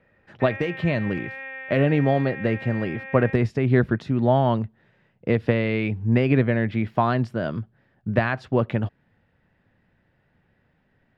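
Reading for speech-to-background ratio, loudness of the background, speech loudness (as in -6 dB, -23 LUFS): 12.0 dB, -35.5 LUFS, -23.5 LUFS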